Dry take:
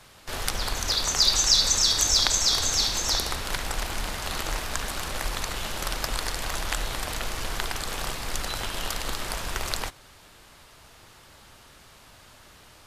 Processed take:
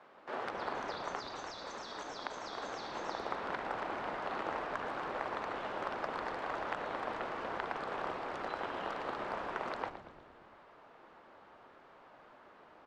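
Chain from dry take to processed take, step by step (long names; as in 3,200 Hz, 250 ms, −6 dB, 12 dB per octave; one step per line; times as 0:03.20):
Bessel high-pass filter 350 Hz, order 4
downward compressor 5 to 1, threshold −25 dBFS, peak gain reduction 9.5 dB
low-pass filter 1,200 Hz 12 dB per octave
echo with shifted repeats 116 ms, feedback 58%, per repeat −140 Hz, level −11.5 dB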